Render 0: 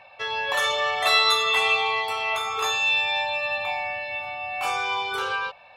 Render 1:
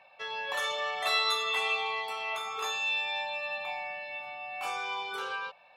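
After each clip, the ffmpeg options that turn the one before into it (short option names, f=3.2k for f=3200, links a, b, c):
-af "highpass=f=140:w=0.5412,highpass=f=140:w=1.3066,volume=-8.5dB"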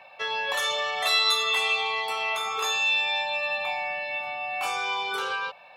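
-filter_complex "[0:a]acrossover=split=120|3000[a][b][c];[b]acompressor=threshold=-35dB:ratio=6[d];[a][d][c]amix=inputs=3:normalize=0,volume=8.5dB"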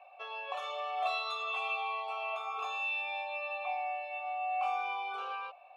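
-filter_complex "[0:a]asplit=3[a][b][c];[a]bandpass=f=730:t=q:w=8,volume=0dB[d];[b]bandpass=f=1.09k:t=q:w=8,volume=-6dB[e];[c]bandpass=f=2.44k:t=q:w=8,volume=-9dB[f];[d][e][f]amix=inputs=3:normalize=0,volume=1.5dB"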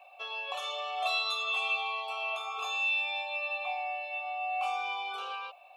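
-af "aexciter=amount=3.1:drive=4.6:freq=2.8k"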